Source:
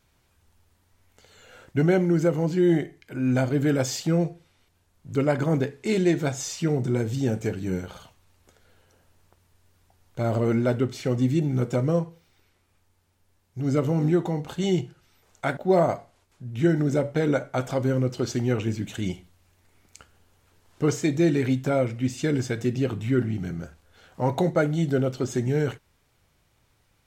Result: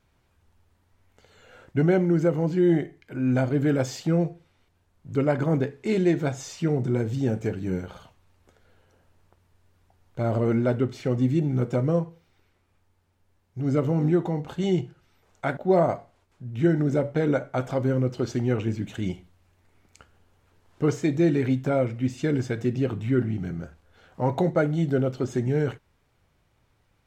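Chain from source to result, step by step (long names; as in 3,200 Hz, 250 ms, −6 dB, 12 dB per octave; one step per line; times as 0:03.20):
high-shelf EQ 3,600 Hz −9.5 dB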